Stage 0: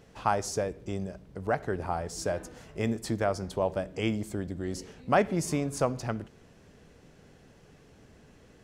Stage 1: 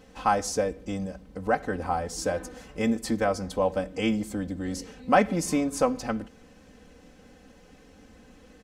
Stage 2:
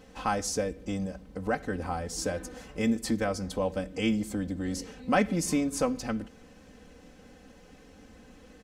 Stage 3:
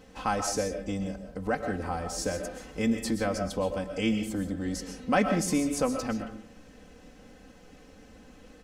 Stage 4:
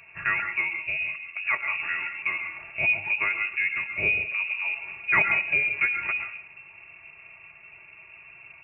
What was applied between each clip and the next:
comb 3.9 ms, depth 82%; trim +1.5 dB
dynamic bell 830 Hz, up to -7 dB, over -38 dBFS, Q 0.76
algorithmic reverb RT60 0.41 s, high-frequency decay 0.55×, pre-delay 90 ms, DRR 6.5 dB
frequency inversion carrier 2.7 kHz; trim +2.5 dB

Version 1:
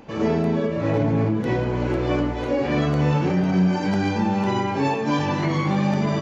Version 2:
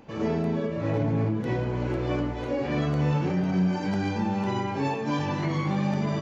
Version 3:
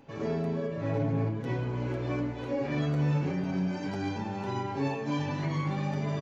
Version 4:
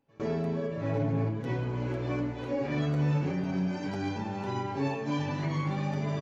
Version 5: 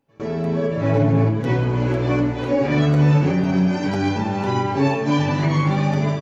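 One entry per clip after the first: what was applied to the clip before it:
peaking EQ 120 Hz +3 dB 0.9 oct; trim -6 dB
comb 7.3 ms, depth 53%; trim -5.5 dB
gate with hold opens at -28 dBFS
level rider gain up to 8 dB; trim +4 dB

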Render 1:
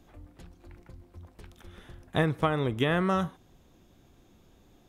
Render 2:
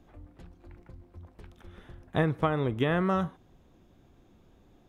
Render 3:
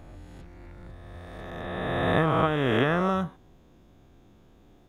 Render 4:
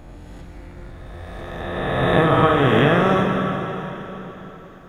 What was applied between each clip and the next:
treble shelf 3.4 kHz -10 dB
reverse spectral sustain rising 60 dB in 2.34 s
plate-style reverb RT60 3.9 s, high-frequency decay 0.9×, DRR 0.5 dB; trim +5.5 dB

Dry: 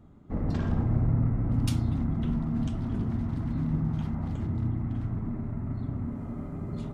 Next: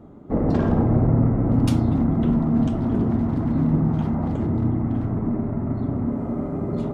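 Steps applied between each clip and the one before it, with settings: peaking EQ 480 Hz +14 dB 2.9 oct; trim +1.5 dB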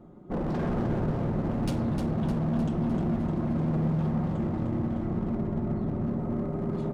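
comb 5.6 ms, depth 47%; hard clipper -20 dBFS, distortion -9 dB; feedback delay 305 ms, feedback 57%, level -6.5 dB; trim -6 dB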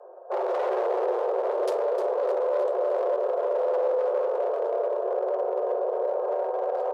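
local Wiener filter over 25 samples; frequency shift +350 Hz; in parallel at -1 dB: peak limiter -25 dBFS, peak gain reduction 7.5 dB; on the sum: trim -1.5 dB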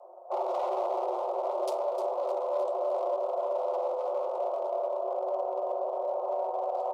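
static phaser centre 450 Hz, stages 6

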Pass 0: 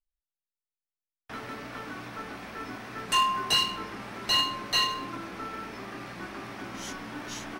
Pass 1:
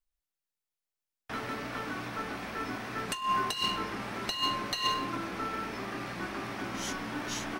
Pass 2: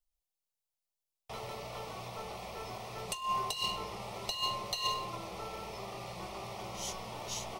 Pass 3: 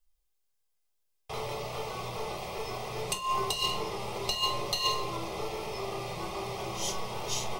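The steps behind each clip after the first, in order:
compressor with a negative ratio -28 dBFS, ratio -0.5
static phaser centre 660 Hz, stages 4
reverberation RT60 0.35 s, pre-delay 3 ms, DRR 4.5 dB; trim +4 dB

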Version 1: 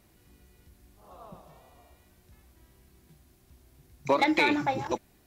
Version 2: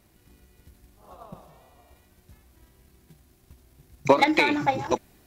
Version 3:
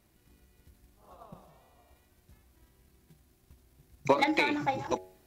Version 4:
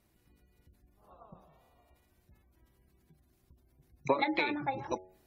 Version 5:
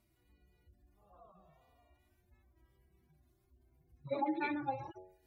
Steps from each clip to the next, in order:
transient shaper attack +9 dB, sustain +5 dB
de-hum 92.84 Hz, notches 9; trim -6 dB
spectral gate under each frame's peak -30 dB strong; trim -4 dB
harmonic-percussive separation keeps harmonic; trim -1.5 dB

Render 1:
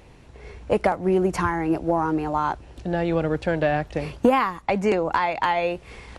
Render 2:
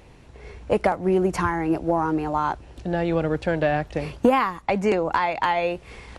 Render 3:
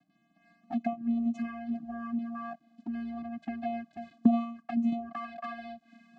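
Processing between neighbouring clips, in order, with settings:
no audible change
vocoder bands 8, square 233 Hz; touch-sensitive flanger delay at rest 6.9 ms, full sweep at -19.5 dBFS; trim -8 dB

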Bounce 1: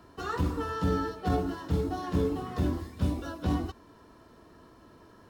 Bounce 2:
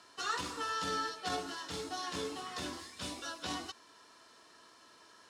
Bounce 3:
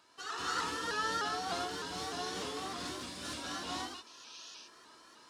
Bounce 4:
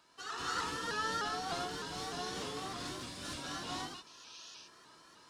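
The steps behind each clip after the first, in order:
frequency weighting ITU-R 468; trim -3 dB
painted sound noise, 4.06–4.38 s, 2.4–6.6 kHz -51 dBFS; gated-style reverb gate 320 ms rising, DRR -7 dB; vibrato with a chosen wave saw up 3.3 Hz, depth 100 cents; trim -6.5 dB
octave divider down 1 oct, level -4 dB; trim -1.5 dB

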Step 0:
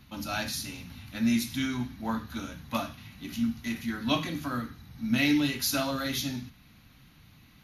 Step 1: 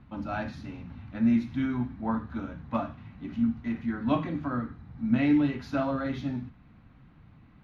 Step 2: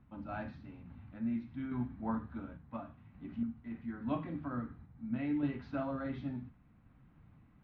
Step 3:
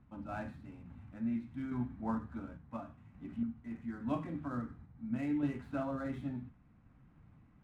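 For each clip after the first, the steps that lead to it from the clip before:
low-pass 1.3 kHz 12 dB/octave; trim +2.5 dB
random-step tremolo; distance through air 250 m; trim -6 dB
median filter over 9 samples

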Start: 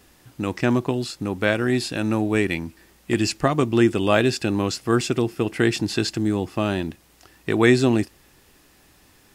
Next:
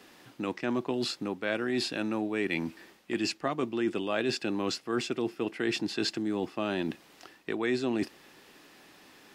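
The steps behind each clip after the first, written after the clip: three-band isolator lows -22 dB, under 170 Hz, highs -14 dB, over 4.8 kHz; reverse; compression 4:1, threshold -31 dBFS, peak gain reduction 16 dB; reverse; treble shelf 4.9 kHz +5.5 dB; trim +2 dB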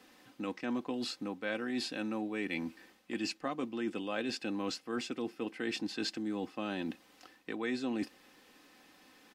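comb 3.9 ms, depth 49%; trim -6.5 dB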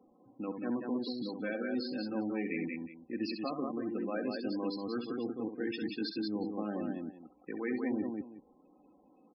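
local Wiener filter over 25 samples; multi-tap echo 67/184/364 ms -7.5/-3.5/-15.5 dB; loudest bins only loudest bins 32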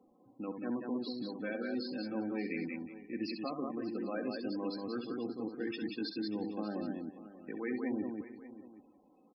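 delay 588 ms -15.5 dB; trim -2 dB

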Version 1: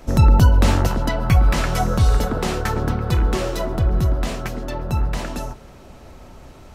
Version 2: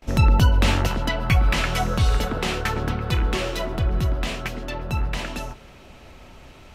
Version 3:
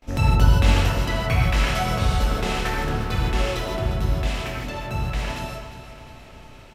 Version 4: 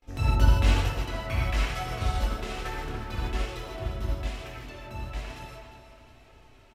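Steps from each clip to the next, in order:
gate with hold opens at -36 dBFS; peaking EQ 2.7 kHz +9.5 dB 1.3 oct; trim -4 dB
on a send: feedback delay 353 ms, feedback 54%, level -12.5 dB; on the sum: gated-style reverb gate 190 ms flat, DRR -3.5 dB; trim -5.5 dB
flange 1.1 Hz, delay 2.3 ms, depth 1.1 ms, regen -39%; speakerphone echo 290 ms, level -9 dB; upward expansion 1.5:1, over -29 dBFS

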